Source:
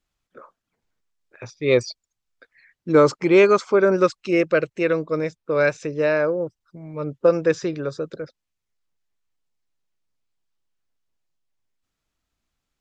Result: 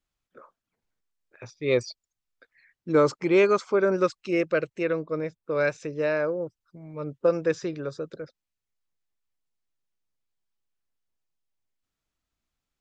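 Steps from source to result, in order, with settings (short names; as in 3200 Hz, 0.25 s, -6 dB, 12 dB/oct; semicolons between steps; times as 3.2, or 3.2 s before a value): 4.82–5.42 LPF 3800 Hz -> 2000 Hz 6 dB/oct; gain -5.5 dB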